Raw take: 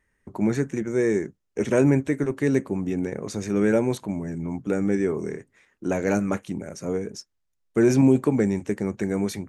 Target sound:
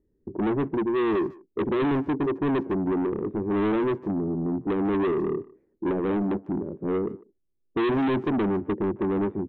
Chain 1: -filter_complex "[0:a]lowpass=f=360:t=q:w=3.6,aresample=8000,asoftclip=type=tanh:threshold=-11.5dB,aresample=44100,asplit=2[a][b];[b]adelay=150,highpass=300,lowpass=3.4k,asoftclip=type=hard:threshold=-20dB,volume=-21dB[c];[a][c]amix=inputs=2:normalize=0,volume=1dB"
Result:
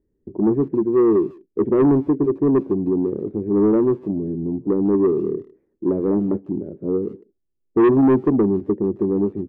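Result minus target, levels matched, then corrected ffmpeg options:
soft clip: distortion -7 dB
-filter_complex "[0:a]lowpass=f=360:t=q:w=3.6,aresample=8000,asoftclip=type=tanh:threshold=-23dB,aresample=44100,asplit=2[a][b];[b]adelay=150,highpass=300,lowpass=3.4k,asoftclip=type=hard:threshold=-20dB,volume=-21dB[c];[a][c]amix=inputs=2:normalize=0,volume=1dB"

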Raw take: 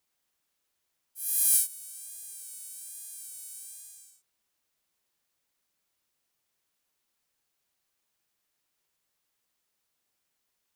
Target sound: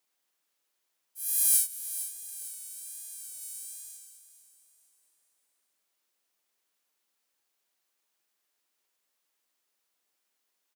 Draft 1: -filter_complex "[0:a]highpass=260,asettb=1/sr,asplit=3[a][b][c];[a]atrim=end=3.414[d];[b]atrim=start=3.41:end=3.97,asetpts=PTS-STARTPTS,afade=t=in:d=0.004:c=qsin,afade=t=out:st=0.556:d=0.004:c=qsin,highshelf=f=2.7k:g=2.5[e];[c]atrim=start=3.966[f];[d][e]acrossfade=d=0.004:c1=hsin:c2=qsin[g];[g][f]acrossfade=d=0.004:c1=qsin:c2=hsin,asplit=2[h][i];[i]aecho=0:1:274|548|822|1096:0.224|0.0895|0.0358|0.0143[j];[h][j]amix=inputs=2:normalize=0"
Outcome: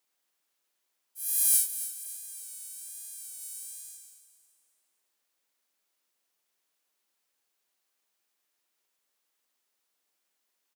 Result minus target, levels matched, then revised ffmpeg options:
echo 0.181 s early
-filter_complex "[0:a]highpass=260,asettb=1/sr,asplit=3[a][b][c];[a]atrim=end=3.414[d];[b]atrim=start=3.41:end=3.97,asetpts=PTS-STARTPTS,afade=t=in:d=0.004:c=qsin,afade=t=out:st=0.556:d=0.004:c=qsin,highshelf=f=2.7k:g=2.5[e];[c]atrim=start=3.966[f];[d][e]acrossfade=d=0.004:c1=hsin:c2=qsin[g];[g][f]acrossfade=d=0.004:c1=qsin:c2=hsin,asplit=2[h][i];[i]aecho=0:1:455|910|1365|1820:0.224|0.0895|0.0358|0.0143[j];[h][j]amix=inputs=2:normalize=0"

